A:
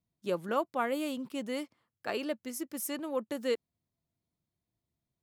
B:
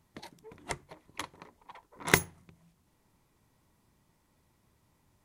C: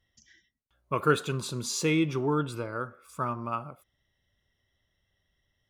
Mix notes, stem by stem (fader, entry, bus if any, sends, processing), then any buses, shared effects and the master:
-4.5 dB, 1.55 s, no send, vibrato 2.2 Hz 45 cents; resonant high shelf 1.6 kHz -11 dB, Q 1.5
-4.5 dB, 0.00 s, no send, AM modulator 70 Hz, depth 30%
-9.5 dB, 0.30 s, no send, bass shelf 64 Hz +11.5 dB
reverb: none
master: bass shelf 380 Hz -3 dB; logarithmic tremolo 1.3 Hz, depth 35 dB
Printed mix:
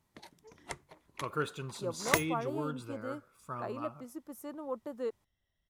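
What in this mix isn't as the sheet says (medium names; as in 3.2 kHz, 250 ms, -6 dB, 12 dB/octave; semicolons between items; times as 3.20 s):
stem B: missing AM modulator 70 Hz, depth 30%; master: missing logarithmic tremolo 1.3 Hz, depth 35 dB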